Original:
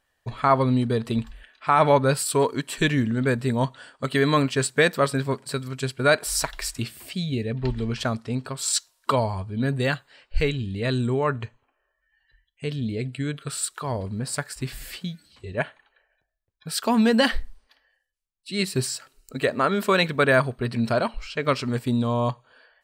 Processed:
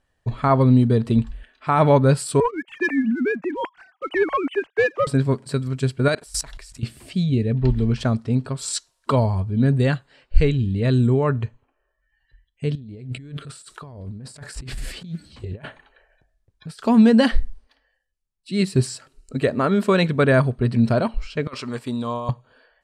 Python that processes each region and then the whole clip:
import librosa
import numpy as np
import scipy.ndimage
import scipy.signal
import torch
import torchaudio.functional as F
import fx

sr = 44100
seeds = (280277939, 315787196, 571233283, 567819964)

y = fx.chain(x, sr, fx.sine_speech(),
    fx.highpass(hz=790.0, slope=6),
    fx.leveller(passes=1), at=(2.4, 5.07))
y = fx.chain(y, sr, fx.high_shelf(hz=2400.0, db=6.0),
    fx.level_steps(step_db=21), at=(6.08, 6.83))
y = fx.chain(y, sr, fx.over_compress(threshold_db=-40.0, ratio=-1.0),
    fx.doppler_dist(depth_ms=0.19), at=(12.75, 16.79))
y = fx.chain(y, sr, fx.highpass(hz=830.0, slope=6),
    fx.over_compress(threshold_db=-30.0, ratio=-0.5),
    fx.peak_eq(hz=1100.0, db=5.0, octaves=0.39), at=(21.47, 22.29))
y = scipy.signal.sosfilt(scipy.signal.butter(4, 11000.0, 'lowpass', fs=sr, output='sos'), y)
y = fx.low_shelf(y, sr, hz=470.0, db=12.0)
y = y * 10.0 ** (-3.0 / 20.0)